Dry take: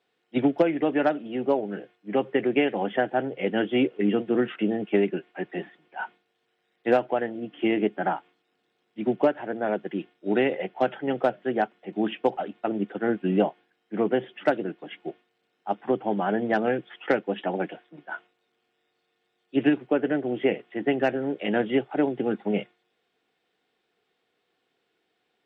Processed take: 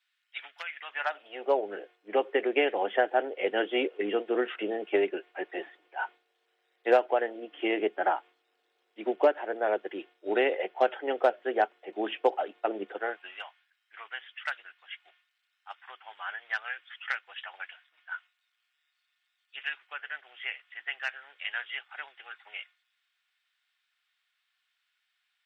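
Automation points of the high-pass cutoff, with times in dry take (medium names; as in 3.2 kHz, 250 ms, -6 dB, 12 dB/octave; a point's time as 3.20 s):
high-pass 24 dB/octave
0.80 s 1.4 kHz
1.59 s 390 Hz
12.91 s 390 Hz
13.41 s 1.3 kHz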